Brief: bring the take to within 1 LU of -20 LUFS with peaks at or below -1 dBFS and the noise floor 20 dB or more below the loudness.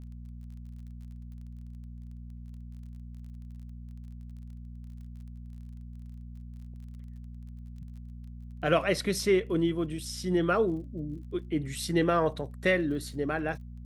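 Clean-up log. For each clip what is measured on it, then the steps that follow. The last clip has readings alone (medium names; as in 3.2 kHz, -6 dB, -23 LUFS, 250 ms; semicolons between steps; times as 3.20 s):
tick rate 28 per s; hum 60 Hz; highest harmonic 240 Hz; hum level -41 dBFS; loudness -29.0 LUFS; peak level -12.0 dBFS; loudness target -20.0 LUFS
-> de-click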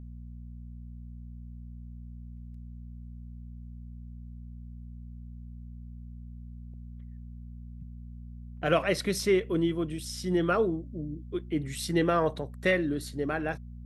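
tick rate 0.072 per s; hum 60 Hz; highest harmonic 240 Hz; hum level -41 dBFS
-> de-hum 60 Hz, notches 4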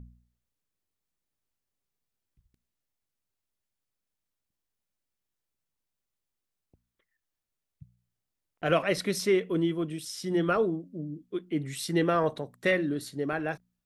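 hum not found; loudness -29.0 LUFS; peak level -12.0 dBFS; loudness target -20.0 LUFS
-> trim +9 dB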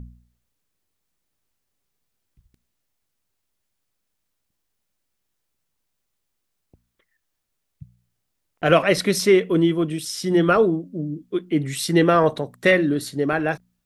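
loudness -20.0 LUFS; peak level -3.0 dBFS; noise floor -77 dBFS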